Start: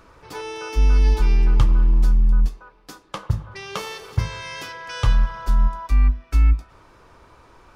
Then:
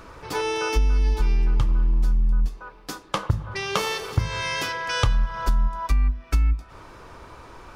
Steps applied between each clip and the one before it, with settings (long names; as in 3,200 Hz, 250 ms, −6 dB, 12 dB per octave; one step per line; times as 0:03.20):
downward compressor 6 to 1, threshold −24 dBFS, peak gain reduction 13 dB
level +6.5 dB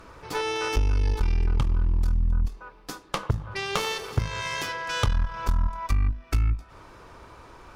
harmonic generator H 6 −17 dB, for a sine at −6 dBFS
level −3.5 dB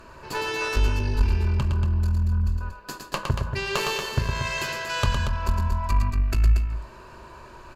EQ curve with evenly spaced ripples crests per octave 1.4, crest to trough 8 dB
loudspeakers that aren't time-aligned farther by 38 metres −5 dB, 80 metres −7 dB